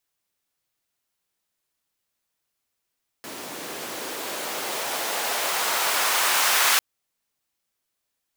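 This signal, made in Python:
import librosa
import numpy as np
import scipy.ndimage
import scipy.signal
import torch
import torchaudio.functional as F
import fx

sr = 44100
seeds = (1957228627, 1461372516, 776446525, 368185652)

y = fx.riser_noise(sr, seeds[0], length_s=3.55, colour='pink', kind='highpass', start_hz=270.0, end_hz=1200.0, q=1.1, swell_db=20, law='exponential')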